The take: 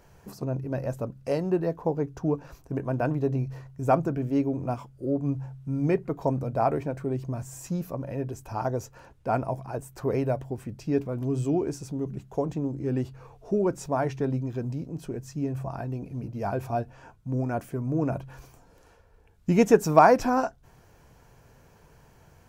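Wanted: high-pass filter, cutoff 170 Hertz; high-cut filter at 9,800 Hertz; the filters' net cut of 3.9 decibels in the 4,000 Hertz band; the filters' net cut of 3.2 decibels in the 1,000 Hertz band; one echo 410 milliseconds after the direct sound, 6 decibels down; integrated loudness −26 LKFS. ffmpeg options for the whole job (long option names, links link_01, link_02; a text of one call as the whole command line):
ffmpeg -i in.wav -af "highpass=170,lowpass=9800,equalizer=frequency=1000:width_type=o:gain=-4.5,equalizer=frequency=4000:width_type=o:gain=-5.5,aecho=1:1:410:0.501,volume=3.5dB" out.wav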